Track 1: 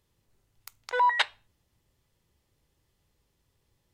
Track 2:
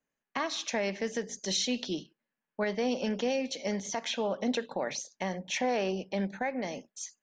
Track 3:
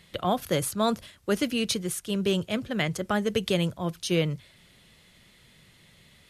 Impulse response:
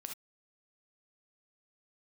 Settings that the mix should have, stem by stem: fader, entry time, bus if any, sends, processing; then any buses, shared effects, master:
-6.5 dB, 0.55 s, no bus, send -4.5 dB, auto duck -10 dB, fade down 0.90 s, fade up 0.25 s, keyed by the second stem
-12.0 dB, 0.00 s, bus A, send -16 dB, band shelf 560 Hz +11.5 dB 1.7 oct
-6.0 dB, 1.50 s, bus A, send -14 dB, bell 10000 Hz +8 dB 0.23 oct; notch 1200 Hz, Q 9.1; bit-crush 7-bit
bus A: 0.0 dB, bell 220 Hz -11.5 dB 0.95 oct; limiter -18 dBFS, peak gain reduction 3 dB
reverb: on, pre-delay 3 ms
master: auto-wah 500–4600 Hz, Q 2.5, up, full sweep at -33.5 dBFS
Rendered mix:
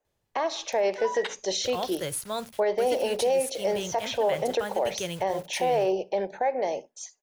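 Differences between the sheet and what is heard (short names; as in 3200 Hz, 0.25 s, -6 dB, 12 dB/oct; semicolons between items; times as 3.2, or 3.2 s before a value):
stem 1: entry 0.55 s -> 0.05 s; stem 2 -12.0 dB -> -0.5 dB; master: missing auto-wah 500–4600 Hz, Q 2.5, up, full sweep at -33.5 dBFS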